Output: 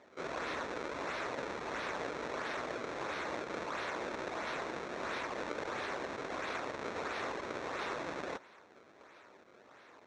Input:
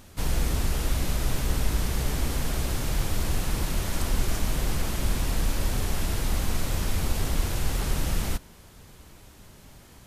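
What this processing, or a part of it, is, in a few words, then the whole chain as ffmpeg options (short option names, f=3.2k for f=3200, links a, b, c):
circuit-bent sampling toy: -af "equalizer=f=180:t=o:w=0.95:g=-5,acrusher=samples=28:mix=1:aa=0.000001:lfo=1:lforange=44.8:lforate=1.5,highpass=460,equalizer=f=770:t=q:w=4:g=-4,equalizer=f=3k:t=q:w=4:g=-10,equalizer=f=4.8k:t=q:w=4:g=-10,lowpass=f=5.5k:w=0.5412,lowpass=f=5.5k:w=1.3066"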